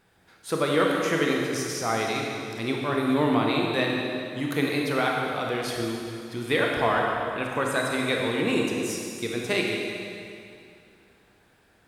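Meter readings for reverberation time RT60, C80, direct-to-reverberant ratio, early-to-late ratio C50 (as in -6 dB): 2.5 s, 1.5 dB, -1.0 dB, 0.0 dB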